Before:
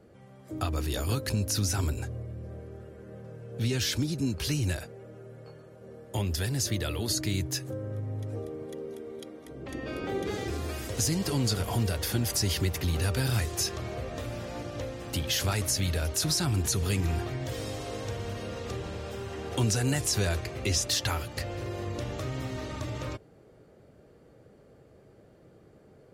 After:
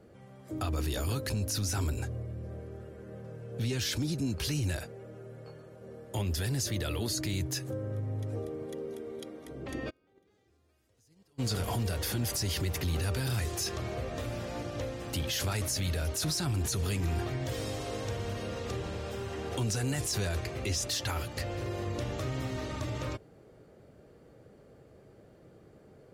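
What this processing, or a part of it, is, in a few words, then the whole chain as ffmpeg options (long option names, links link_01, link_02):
soft clipper into limiter: -filter_complex "[0:a]asoftclip=type=tanh:threshold=-17.5dB,alimiter=level_in=0.5dB:limit=-24dB:level=0:latency=1:release=11,volume=-0.5dB,asplit=3[link_01][link_02][link_03];[link_01]afade=type=out:start_time=9.89:duration=0.02[link_04];[link_02]agate=range=-36dB:threshold=-26dB:ratio=16:detection=peak,afade=type=in:start_time=9.89:duration=0.02,afade=type=out:start_time=11.38:duration=0.02[link_05];[link_03]afade=type=in:start_time=11.38:duration=0.02[link_06];[link_04][link_05][link_06]amix=inputs=3:normalize=0"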